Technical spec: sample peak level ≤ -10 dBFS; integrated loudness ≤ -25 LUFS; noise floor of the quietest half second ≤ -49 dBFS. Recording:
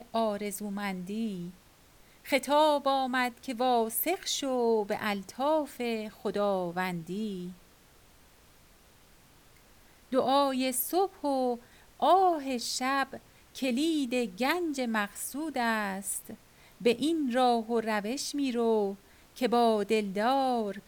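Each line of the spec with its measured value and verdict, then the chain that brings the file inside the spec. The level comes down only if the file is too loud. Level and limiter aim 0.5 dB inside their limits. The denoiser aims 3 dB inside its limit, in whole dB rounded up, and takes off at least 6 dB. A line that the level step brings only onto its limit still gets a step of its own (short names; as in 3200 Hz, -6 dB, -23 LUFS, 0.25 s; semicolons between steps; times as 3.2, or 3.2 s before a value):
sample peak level -12.5 dBFS: OK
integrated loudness -29.5 LUFS: OK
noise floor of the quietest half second -59 dBFS: OK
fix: none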